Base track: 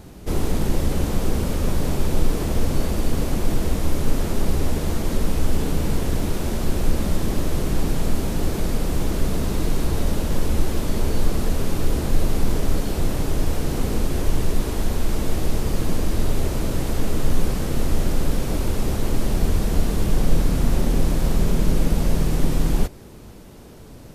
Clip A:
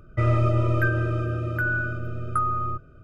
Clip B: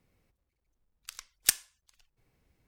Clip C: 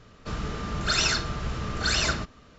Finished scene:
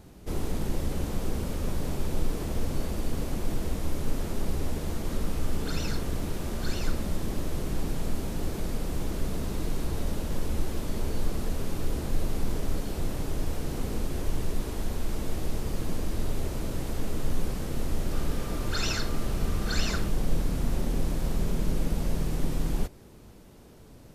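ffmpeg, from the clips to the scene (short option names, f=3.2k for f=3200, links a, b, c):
-filter_complex "[3:a]asplit=2[a][b];[0:a]volume=-8.5dB[c];[a]atrim=end=2.58,asetpts=PTS-STARTPTS,volume=-15.5dB,afade=t=in:d=0.004:c=hsin,afade=t=out:st=2.576:d=0.004:c=hsin,adelay=4790[d];[b]atrim=end=2.58,asetpts=PTS-STARTPTS,volume=-8dB,afade=t=in:d=0.004:c=hsin,afade=t=out:st=2.576:d=0.004:c=hsin,adelay=17850[e];[c][d][e]amix=inputs=3:normalize=0"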